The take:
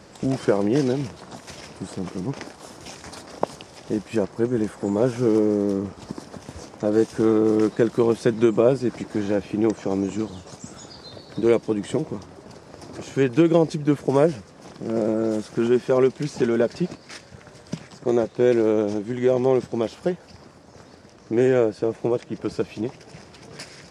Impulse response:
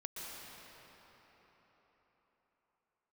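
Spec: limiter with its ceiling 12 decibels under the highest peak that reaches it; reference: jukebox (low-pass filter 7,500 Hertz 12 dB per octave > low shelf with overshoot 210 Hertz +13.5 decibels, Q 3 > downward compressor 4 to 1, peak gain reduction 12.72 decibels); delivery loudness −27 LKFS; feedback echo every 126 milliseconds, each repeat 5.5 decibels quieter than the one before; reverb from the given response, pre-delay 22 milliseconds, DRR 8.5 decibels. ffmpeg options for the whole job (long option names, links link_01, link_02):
-filter_complex "[0:a]alimiter=limit=-14.5dB:level=0:latency=1,aecho=1:1:126|252|378|504|630|756|882:0.531|0.281|0.149|0.079|0.0419|0.0222|0.0118,asplit=2[link_01][link_02];[1:a]atrim=start_sample=2205,adelay=22[link_03];[link_02][link_03]afir=irnorm=-1:irlink=0,volume=-8.5dB[link_04];[link_01][link_04]amix=inputs=2:normalize=0,lowpass=7500,lowshelf=frequency=210:width_type=q:width=3:gain=13.5,acompressor=threshold=-18dB:ratio=4,volume=-4dB"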